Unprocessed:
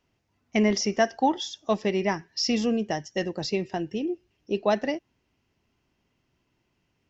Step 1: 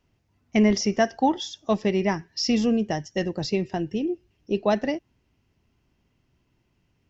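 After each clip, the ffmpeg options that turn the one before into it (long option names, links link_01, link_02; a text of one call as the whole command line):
ffmpeg -i in.wav -af "lowshelf=frequency=190:gain=9" out.wav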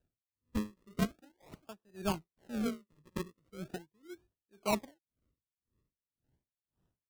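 ffmpeg -i in.wav -filter_complex "[0:a]acrossover=split=270[link_01][link_02];[link_02]acrusher=samples=40:mix=1:aa=0.000001:lfo=1:lforange=40:lforate=0.4[link_03];[link_01][link_03]amix=inputs=2:normalize=0,aeval=exprs='val(0)*pow(10,-37*(0.5-0.5*cos(2*PI*1.9*n/s))/20)':channel_layout=same,volume=-8dB" out.wav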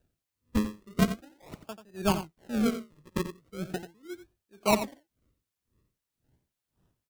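ffmpeg -i in.wav -af "aecho=1:1:88:0.282,volume=7.5dB" out.wav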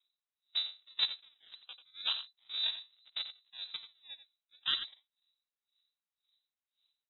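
ffmpeg -i in.wav -af "aeval=exprs='val(0)*sin(2*PI*140*n/s)':channel_layout=same,lowpass=frequency=3400:width_type=q:width=0.5098,lowpass=frequency=3400:width_type=q:width=0.6013,lowpass=frequency=3400:width_type=q:width=0.9,lowpass=frequency=3400:width_type=q:width=2.563,afreqshift=-4000,volume=-5.5dB" out.wav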